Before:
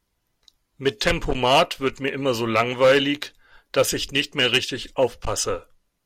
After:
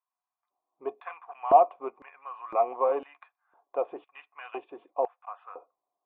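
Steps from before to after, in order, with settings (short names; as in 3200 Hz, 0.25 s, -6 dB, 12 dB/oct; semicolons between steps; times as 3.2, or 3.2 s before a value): vocal tract filter a; LFO high-pass square 0.99 Hz 350–1600 Hz; gain +5 dB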